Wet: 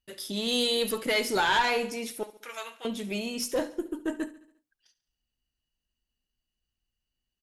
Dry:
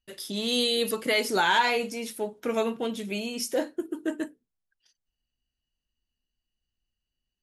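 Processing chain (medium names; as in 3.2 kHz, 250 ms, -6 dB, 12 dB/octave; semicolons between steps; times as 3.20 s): single-diode clipper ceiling -18.5 dBFS; 2.23–2.85 s: high-pass 1.3 kHz 12 dB/octave; feedback delay 70 ms, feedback 54%, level -17 dB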